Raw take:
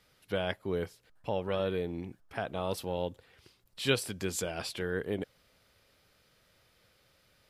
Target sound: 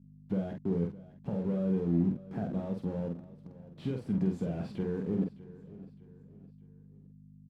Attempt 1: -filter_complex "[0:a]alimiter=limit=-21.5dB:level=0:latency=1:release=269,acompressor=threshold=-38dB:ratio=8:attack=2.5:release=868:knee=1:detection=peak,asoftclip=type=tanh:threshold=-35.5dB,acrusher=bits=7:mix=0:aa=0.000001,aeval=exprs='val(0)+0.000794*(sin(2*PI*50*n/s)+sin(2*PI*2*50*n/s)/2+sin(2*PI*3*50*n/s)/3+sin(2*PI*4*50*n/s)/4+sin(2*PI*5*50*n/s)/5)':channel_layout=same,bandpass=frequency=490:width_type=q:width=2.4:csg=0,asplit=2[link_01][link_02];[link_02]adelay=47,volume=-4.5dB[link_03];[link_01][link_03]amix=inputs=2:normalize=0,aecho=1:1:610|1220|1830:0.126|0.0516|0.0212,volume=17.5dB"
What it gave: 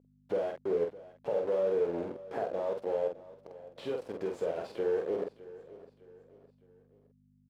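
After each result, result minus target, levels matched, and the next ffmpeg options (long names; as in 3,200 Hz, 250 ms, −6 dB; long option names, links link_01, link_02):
250 Hz band −11.5 dB; downward compressor: peak gain reduction +7 dB
-filter_complex "[0:a]alimiter=limit=-21.5dB:level=0:latency=1:release=269,acompressor=threshold=-38dB:ratio=8:attack=2.5:release=868:knee=1:detection=peak,asoftclip=type=tanh:threshold=-35.5dB,acrusher=bits=7:mix=0:aa=0.000001,aeval=exprs='val(0)+0.000794*(sin(2*PI*50*n/s)+sin(2*PI*2*50*n/s)/2+sin(2*PI*3*50*n/s)/3+sin(2*PI*4*50*n/s)/4+sin(2*PI*5*50*n/s)/5)':channel_layout=same,bandpass=frequency=190:width_type=q:width=2.4:csg=0,asplit=2[link_01][link_02];[link_02]adelay=47,volume=-4.5dB[link_03];[link_01][link_03]amix=inputs=2:normalize=0,aecho=1:1:610|1220|1830:0.126|0.0516|0.0212,volume=17.5dB"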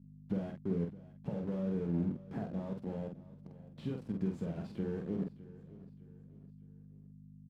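downward compressor: peak gain reduction +7 dB
-filter_complex "[0:a]alimiter=limit=-21.5dB:level=0:latency=1:release=269,acompressor=threshold=-30dB:ratio=8:attack=2.5:release=868:knee=1:detection=peak,asoftclip=type=tanh:threshold=-35.5dB,acrusher=bits=7:mix=0:aa=0.000001,aeval=exprs='val(0)+0.000794*(sin(2*PI*50*n/s)+sin(2*PI*2*50*n/s)/2+sin(2*PI*3*50*n/s)/3+sin(2*PI*4*50*n/s)/4+sin(2*PI*5*50*n/s)/5)':channel_layout=same,bandpass=frequency=190:width_type=q:width=2.4:csg=0,asplit=2[link_01][link_02];[link_02]adelay=47,volume=-4.5dB[link_03];[link_01][link_03]amix=inputs=2:normalize=0,aecho=1:1:610|1220|1830:0.126|0.0516|0.0212,volume=17.5dB"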